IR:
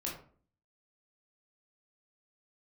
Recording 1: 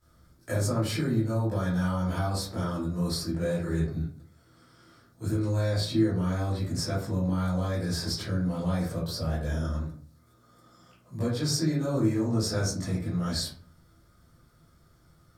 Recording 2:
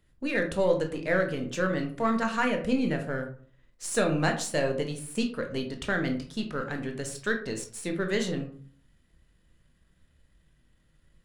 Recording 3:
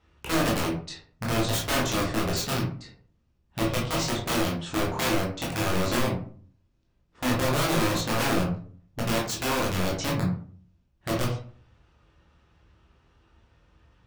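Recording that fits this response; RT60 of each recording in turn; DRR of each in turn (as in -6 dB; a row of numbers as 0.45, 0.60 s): 3; 0.45, 0.45, 0.45 s; -12.0, 4.0, -3.5 dB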